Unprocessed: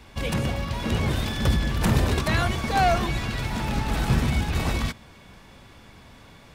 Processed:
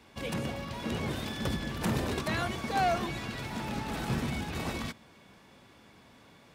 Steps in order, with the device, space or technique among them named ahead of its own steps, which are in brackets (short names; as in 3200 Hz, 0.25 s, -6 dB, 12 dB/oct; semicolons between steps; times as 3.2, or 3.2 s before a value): filter by subtraction (in parallel: LPF 260 Hz 12 dB/oct + phase invert); on the sum: gain -7.5 dB